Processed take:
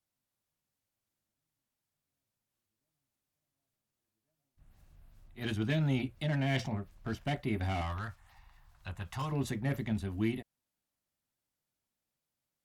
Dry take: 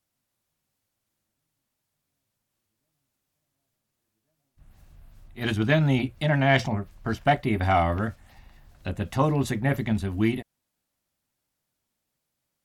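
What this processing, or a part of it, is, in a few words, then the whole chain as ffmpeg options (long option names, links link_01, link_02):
one-band saturation: -filter_complex "[0:a]asettb=1/sr,asplit=3[link_01][link_02][link_03];[link_01]atrim=end=7.814[link_04];[link_02]atrim=start=7.81:end=9.32,asetpts=PTS-STARTPTS,afade=type=in:duration=0.004:curve=qsin,afade=type=out:start_time=1.506:duration=0.004:curve=qsin,equalizer=frequency=250:width_type=o:width=1:gain=-12,equalizer=frequency=500:width_type=o:width=1:gain=-10,equalizer=frequency=1000:width_type=o:width=1:gain=9[link_05];[link_03]atrim=start=9.316[link_06];[link_04][link_05]acrossfade=duration=0.004:curve1=hsin:curve2=qsin[link_07];[link_07][link_06]acrossfade=duration=0.004:curve1=qsin:curve2=hsin,acrossover=split=440|2200[link_08][link_09][link_10];[link_09]asoftclip=type=tanh:threshold=-31.5dB[link_11];[link_08][link_11][link_10]amix=inputs=3:normalize=0,volume=-8dB"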